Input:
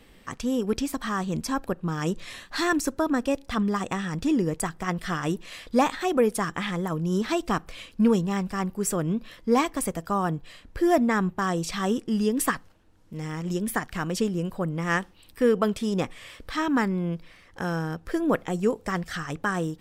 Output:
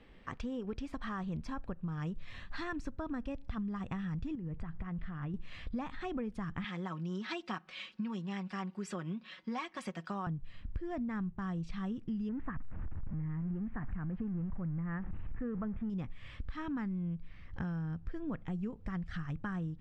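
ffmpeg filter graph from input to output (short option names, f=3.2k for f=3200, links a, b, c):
-filter_complex "[0:a]asettb=1/sr,asplit=3[a][b][c];[a]atrim=end=4.354[d];[b]atrim=start=4.35:end=5.34,asetpts=PTS-STARTPTS,afade=t=in:d=0.004:c=qsin,afade=t=out:st=0.986:d=0.004:c=qsin,lowpass=2.6k,acompressor=threshold=-32dB:ratio=4:attack=3.2:release=140:knee=1:detection=peak[e];[c]atrim=start=5.336[f];[d][e]acrossfade=d=0.004:c1=hsin:c2=qsin[g];[g][f]acrossfade=d=0.004:c1=qsin:c2=hsin,asettb=1/sr,asplit=3[h][i][j];[h]atrim=end=6.644[k];[i]atrim=start=6.64:end=10.27,asetpts=PTS-STARTPTS,afade=t=in:d=0.004:c=qsin,afade=t=out:st=3.626:d=0.004:c=qsin,highpass=230,lowpass=5k,aemphasis=mode=production:type=riaa,aecho=1:1:5.4:0.65,atrim=end_sample=160083[l];[j]atrim=start=10.266[m];[k][l]acrossfade=d=0.004:c1=hsin:c2=qsin[n];[n][m]acrossfade=d=0.004:c1=qsin:c2=hsin,asettb=1/sr,asplit=3[o][p][q];[o]atrim=end=12.294[r];[p]atrim=start=12.29:end=15.9,asetpts=PTS-STARTPTS,afade=t=in:d=0.004:c=qsin,afade=t=out:st=3.606:d=0.004:c=qsin,aeval=exprs='val(0)+0.5*0.0316*sgn(val(0))':c=same,lowpass=f=1.9k:w=0.5412,lowpass=f=1.9k:w=1.3066[s];[q]atrim=start=15.896[t];[r][s]acrossfade=d=0.004:c1=hsin:c2=qsin[u];[u][t]acrossfade=d=0.004:c1=qsin:c2=hsin,lowpass=3k,asubboost=boost=8.5:cutoff=150,acompressor=threshold=-31dB:ratio=6,volume=-5dB"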